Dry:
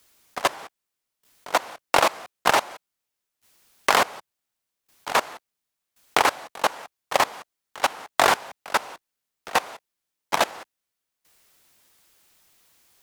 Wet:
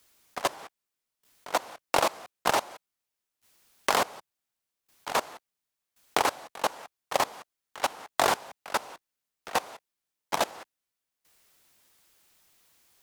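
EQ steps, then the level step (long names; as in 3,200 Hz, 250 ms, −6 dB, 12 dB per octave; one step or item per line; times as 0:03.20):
dynamic equaliser 1,900 Hz, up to −5 dB, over −33 dBFS, Q 0.72
−3.5 dB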